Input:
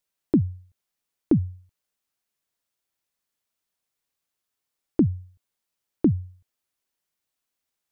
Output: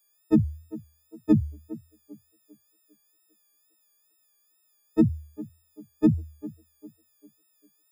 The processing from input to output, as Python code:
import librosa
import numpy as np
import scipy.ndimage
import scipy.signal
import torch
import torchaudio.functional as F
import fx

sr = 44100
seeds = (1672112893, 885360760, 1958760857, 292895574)

y = fx.freq_snap(x, sr, grid_st=6)
y = fx.echo_banded(y, sr, ms=400, feedback_pct=43, hz=440.0, wet_db=-16.0)
y = fx.wow_flutter(y, sr, seeds[0], rate_hz=2.1, depth_cents=76.0)